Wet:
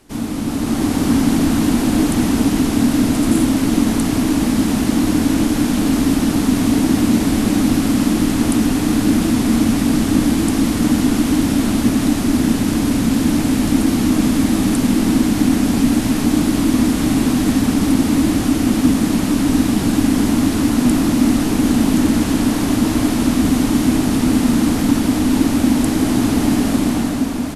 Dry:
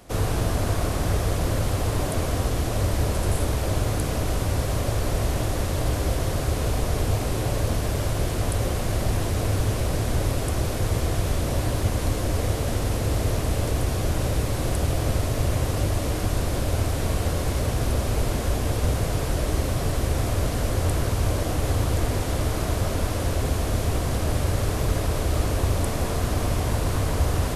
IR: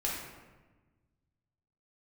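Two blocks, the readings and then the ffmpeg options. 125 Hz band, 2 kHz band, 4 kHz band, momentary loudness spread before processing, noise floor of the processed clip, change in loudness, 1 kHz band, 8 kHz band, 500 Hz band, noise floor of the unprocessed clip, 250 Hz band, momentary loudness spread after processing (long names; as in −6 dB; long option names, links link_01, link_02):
+0.5 dB, +7.0 dB, +8.0 dB, 1 LU, −20 dBFS, +9.5 dB, +5.0 dB, +7.5 dB, +3.0 dB, −27 dBFS, +19.0 dB, 2 LU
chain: -filter_complex "[0:a]afreqshift=-330,dynaudnorm=framelen=150:gausssize=9:maxgain=9dB,asplit=2[link_01][link_02];[link_02]adelay=360,highpass=300,lowpass=3400,asoftclip=type=hard:threshold=-11dB,volume=-7dB[link_03];[link_01][link_03]amix=inputs=2:normalize=0"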